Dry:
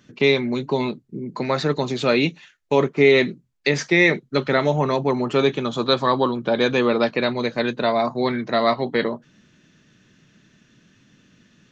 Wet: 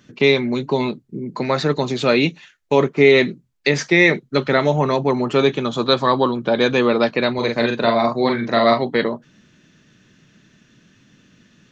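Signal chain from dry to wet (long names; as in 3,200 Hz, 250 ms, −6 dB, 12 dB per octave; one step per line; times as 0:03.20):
0:07.34–0:08.83: double-tracking delay 43 ms −4 dB
level +2.5 dB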